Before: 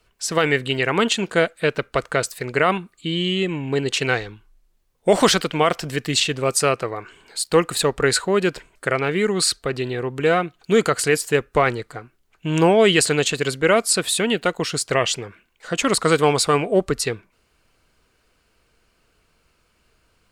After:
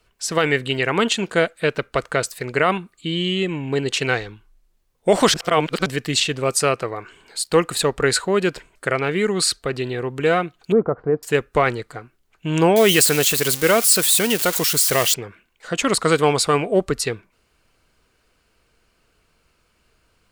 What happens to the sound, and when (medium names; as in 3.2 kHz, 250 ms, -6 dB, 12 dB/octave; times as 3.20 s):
5.34–5.86 s: reverse
10.72–11.23 s: low-pass 1 kHz 24 dB/octave
12.76–15.14 s: zero-crossing glitches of -13 dBFS